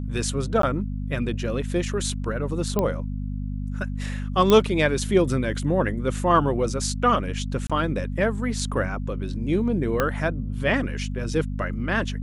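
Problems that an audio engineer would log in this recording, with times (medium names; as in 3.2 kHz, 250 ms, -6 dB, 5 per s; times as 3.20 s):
hum 50 Hz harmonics 5 -29 dBFS
0.62–0.63 s: dropout 13 ms
2.79 s: pop -10 dBFS
4.50 s: pop -6 dBFS
7.67–7.70 s: dropout 26 ms
10.00 s: pop -8 dBFS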